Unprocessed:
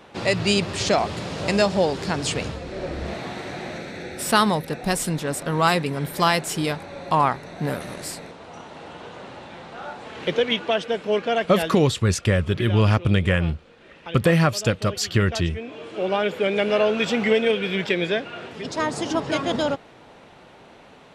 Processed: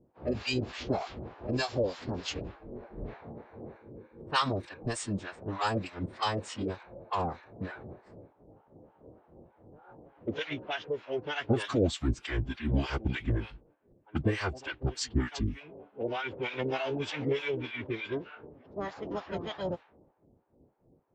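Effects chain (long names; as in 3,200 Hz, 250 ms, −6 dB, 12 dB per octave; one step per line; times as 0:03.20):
two-band tremolo in antiphase 3.3 Hz, depth 100%, crossover 780 Hz
phase-vocoder pitch shift with formants kept −8 semitones
low-pass that shuts in the quiet parts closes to 320 Hz, open at −22.5 dBFS
level −6 dB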